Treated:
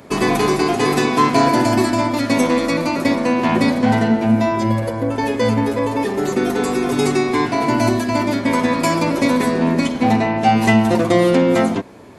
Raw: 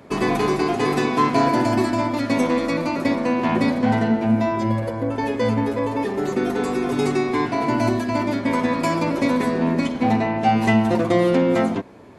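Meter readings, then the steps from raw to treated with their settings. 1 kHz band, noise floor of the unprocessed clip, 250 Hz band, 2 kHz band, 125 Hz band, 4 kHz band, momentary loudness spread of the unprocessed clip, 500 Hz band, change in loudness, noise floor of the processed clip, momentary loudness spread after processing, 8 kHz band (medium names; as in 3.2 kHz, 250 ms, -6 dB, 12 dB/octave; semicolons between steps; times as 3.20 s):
+4.0 dB, -28 dBFS, +3.5 dB, +4.5 dB, +3.5 dB, +6.5 dB, 5 LU, +3.5 dB, +3.5 dB, -25 dBFS, 5 LU, +9.0 dB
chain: treble shelf 4.8 kHz +8 dB; trim +3.5 dB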